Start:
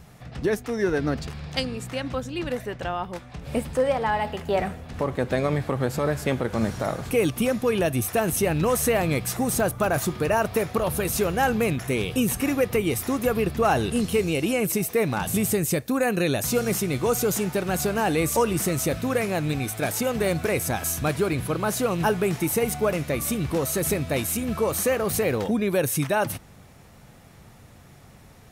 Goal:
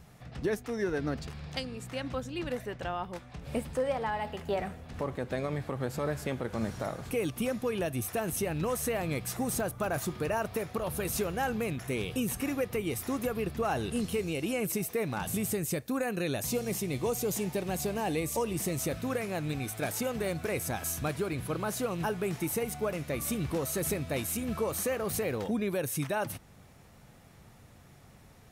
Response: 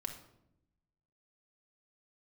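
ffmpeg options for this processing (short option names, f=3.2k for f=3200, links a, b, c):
-filter_complex "[0:a]asettb=1/sr,asplit=3[a][b][c];[a]atrim=end=16.434[d];[b]atrim=start=16.43:end=18.81,asetpts=PTS-STARTPTS,afade=t=in:d=0.004:c=qsin,afade=t=out:st=2.376:d=0.004:c=qsin,equalizer=f=1.4k:t=o:w=0.38:g=-10.5[e];[c]atrim=start=18.806[f];[d][e]acrossfade=d=0.004:c1=hsin:c2=qsin[g];[g][f]acrossfade=d=0.004:c1=qsin:c2=hsin,alimiter=limit=-15dB:level=0:latency=1:release=452,volume=-6dB"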